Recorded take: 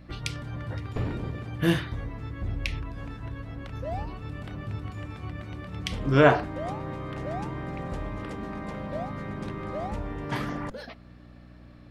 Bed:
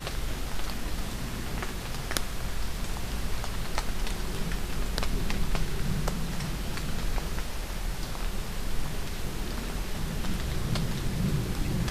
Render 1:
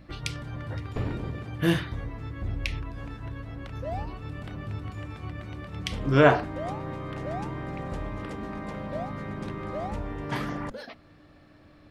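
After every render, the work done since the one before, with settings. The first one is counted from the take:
hum removal 60 Hz, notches 4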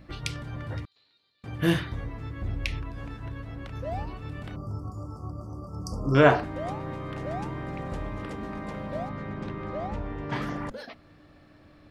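0:00.85–0:01.44: resonant band-pass 4,100 Hz, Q 16
0:04.56–0:06.15: linear-phase brick-wall band-stop 1,400–4,500 Hz
0:09.09–0:10.42: high-frequency loss of the air 86 metres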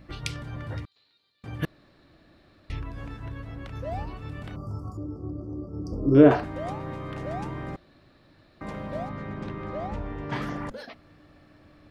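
0:01.65–0:02.70: fill with room tone
0:04.97–0:06.31: drawn EQ curve 210 Hz 0 dB, 320 Hz +11 dB, 950 Hz −10 dB, 5,300 Hz −11 dB, 8,000 Hz −20 dB
0:07.76–0:08.61: fill with room tone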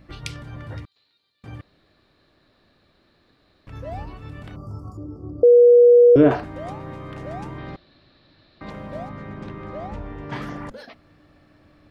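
0:01.61–0:03.67: fill with room tone
0:05.43–0:06.16: beep over 482 Hz −7.5 dBFS
0:07.58–0:08.70: low-pass with resonance 4,100 Hz, resonance Q 2.6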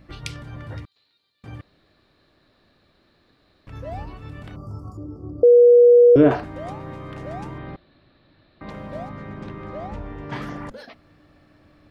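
0:07.58–0:08.69: high-frequency loss of the air 220 metres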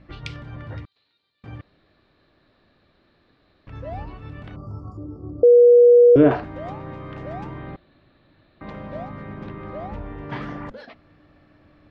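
low-pass filter 3,800 Hz 12 dB per octave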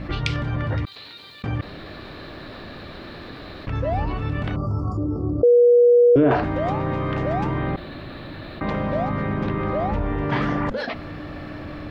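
brickwall limiter −10 dBFS, peak gain reduction 5.5 dB
envelope flattener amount 50%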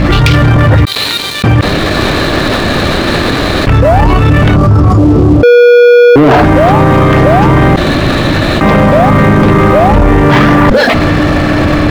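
leveller curve on the samples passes 3
boost into a limiter +18 dB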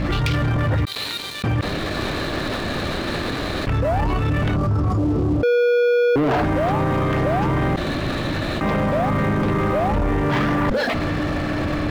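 level −14 dB

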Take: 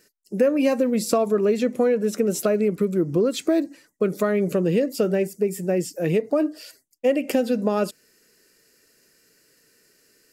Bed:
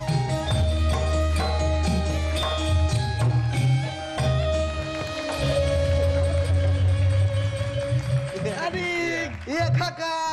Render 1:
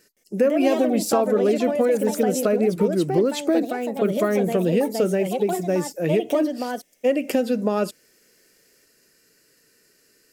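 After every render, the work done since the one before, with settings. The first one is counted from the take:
delay with pitch and tempo change per echo 167 ms, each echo +3 semitones, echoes 2, each echo −6 dB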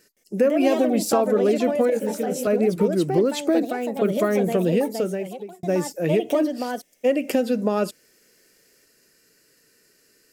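0:01.90–0:02.47: micro pitch shift up and down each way 52 cents
0:04.72–0:05.63: fade out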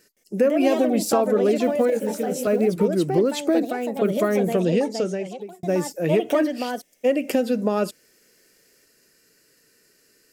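0:01.56–0:02.68: one scale factor per block 7 bits
0:04.59–0:05.41: low-pass with resonance 6,200 Hz, resonance Q 1.8
0:06.11–0:06.69: parametric band 1,000 Hz → 3,100 Hz +11 dB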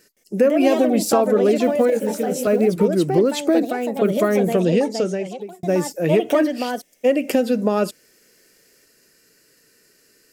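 level +3 dB

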